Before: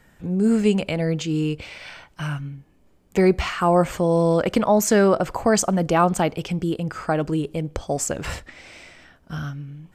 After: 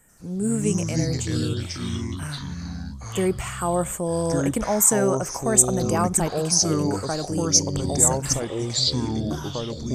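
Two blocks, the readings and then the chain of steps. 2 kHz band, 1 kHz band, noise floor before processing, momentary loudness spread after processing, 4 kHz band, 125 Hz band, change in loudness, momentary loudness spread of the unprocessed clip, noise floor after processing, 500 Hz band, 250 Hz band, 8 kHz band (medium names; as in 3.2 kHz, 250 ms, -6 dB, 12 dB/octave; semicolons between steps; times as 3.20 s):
-5.5 dB, -5.0 dB, -57 dBFS, 13 LU, +7.0 dB, +0.5 dB, -0.5 dB, 14 LU, -35 dBFS, -4.0 dB, -3.0 dB, +10.5 dB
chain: resonant high shelf 6.2 kHz +11.5 dB, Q 3; ever faster or slower copies 88 ms, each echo -5 st, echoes 3; trim -6 dB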